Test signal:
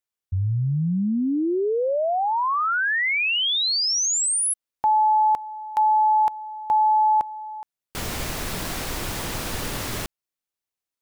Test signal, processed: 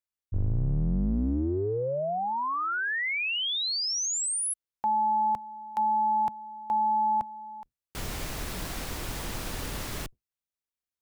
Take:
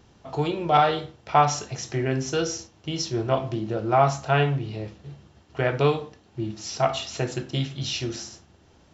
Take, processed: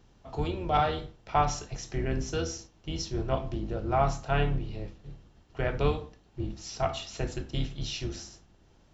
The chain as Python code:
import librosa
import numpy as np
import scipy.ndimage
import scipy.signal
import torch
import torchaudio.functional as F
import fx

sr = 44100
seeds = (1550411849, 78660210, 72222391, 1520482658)

y = fx.octave_divider(x, sr, octaves=2, level_db=2.0)
y = y * librosa.db_to_amplitude(-7.0)